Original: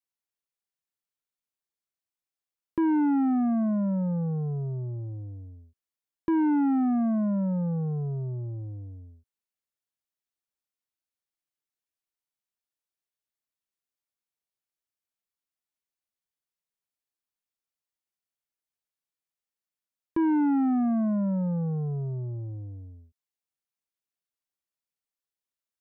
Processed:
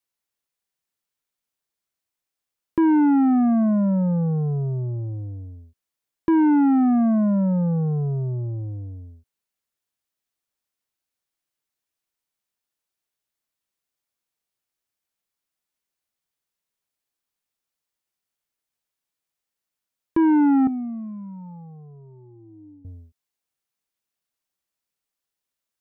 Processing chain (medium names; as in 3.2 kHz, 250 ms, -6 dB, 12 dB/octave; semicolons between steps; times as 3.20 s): 20.67–22.85 s: vowel filter u; trim +6.5 dB